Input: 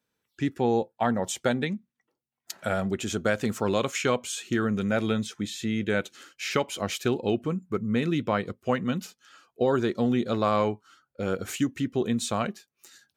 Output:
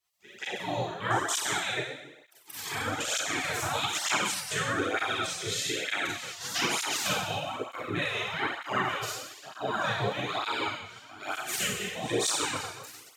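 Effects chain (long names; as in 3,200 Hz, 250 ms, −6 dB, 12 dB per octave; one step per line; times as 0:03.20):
echo ahead of the sound 180 ms −18 dB
in parallel at −2.5 dB: downward compressor, threshold −32 dBFS, peak gain reduction 12.5 dB
on the sum: four-comb reverb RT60 0.97 s, combs from 30 ms, DRR −6.5 dB
gate on every frequency bin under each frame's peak −15 dB weak
through-zero flanger with one copy inverted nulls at 1.1 Hz, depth 3.9 ms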